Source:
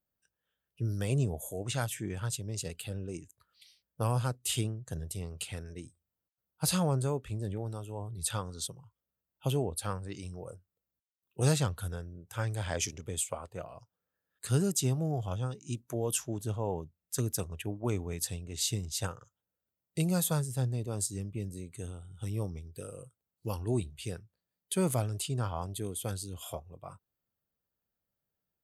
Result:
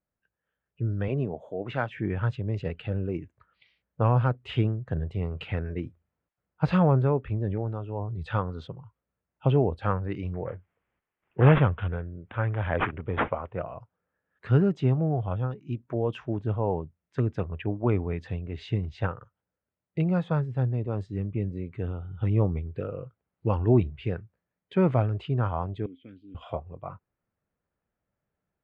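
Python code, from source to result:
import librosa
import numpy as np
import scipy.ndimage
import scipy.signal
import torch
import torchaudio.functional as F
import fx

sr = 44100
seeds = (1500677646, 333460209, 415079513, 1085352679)

y = fx.highpass(x, sr, hz=180.0, slope=12, at=(1.08, 1.97))
y = fx.resample_bad(y, sr, factor=6, down='none', up='filtered', at=(10.34, 13.53))
y = fx.vowel_filter(y, sr, vowel='i', at=(25.86, 26.35))
y = scipy.signal.sosfilt(scipy.signal.butter(4, 2300.0, 'lowpass', fs=sr, output='sos'), y)
y = fx.rider(y, sr, range_db=10, speed_s=2.0)
y = y * librosa.db_to_amplitude(5.0)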